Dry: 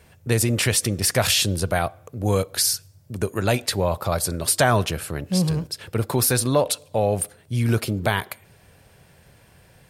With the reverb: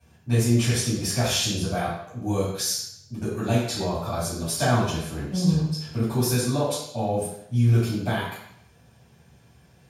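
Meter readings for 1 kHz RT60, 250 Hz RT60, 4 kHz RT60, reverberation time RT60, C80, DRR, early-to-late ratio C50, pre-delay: 0.70 s, 0.75 s, 0.70 s, 0.70 s, 4.5 dB, -11.5 dB, 1.5 dB, 3 ms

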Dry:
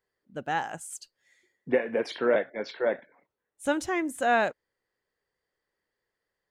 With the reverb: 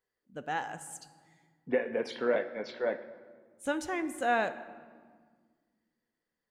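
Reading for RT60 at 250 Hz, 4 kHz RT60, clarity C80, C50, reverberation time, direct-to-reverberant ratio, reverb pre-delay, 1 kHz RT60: 2.5 s, 1.1 s, 15.0 dB, 13.5 dB, 1.7 s, 10.0 dB, 4 ms, 1.6 s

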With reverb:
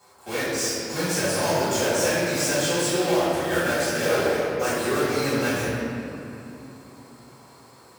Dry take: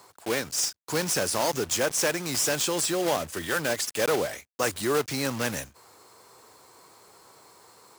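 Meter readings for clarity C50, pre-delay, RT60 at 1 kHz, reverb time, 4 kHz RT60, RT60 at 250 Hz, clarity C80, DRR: -3.5 dB, 3 ms, 2.7 s, 2.9 s, 1.7 s, 4.1 s, -2.0 dB, -14.0 dB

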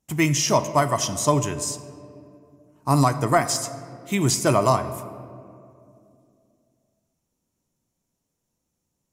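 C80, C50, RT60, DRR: 13.5 dB, 12.5 dB, 2.6 s, 11.0 dB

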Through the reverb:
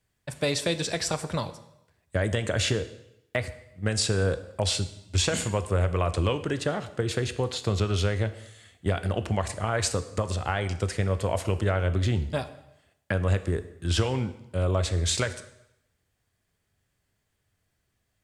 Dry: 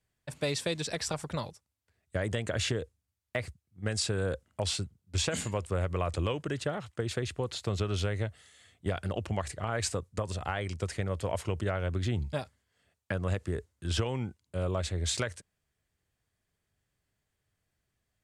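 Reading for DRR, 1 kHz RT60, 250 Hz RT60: 10.5 dB, 0.85 s, 0.80 s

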